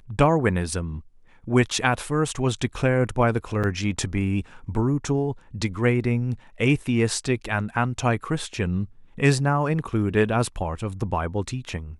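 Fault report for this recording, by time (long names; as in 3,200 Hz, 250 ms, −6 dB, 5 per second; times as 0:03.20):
0:03.63–0:03.64: drop-out 7.3 ms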